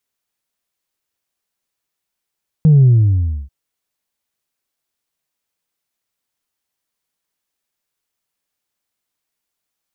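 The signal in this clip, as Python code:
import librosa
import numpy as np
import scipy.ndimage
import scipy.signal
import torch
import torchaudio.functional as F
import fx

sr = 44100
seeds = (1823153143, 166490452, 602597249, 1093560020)

y = fx.sub_drop(sr, level_db=-6, start_hz=160.0, length_s=0.84, drive_db=0.5, fade_s=0.66, end_hz=65.0)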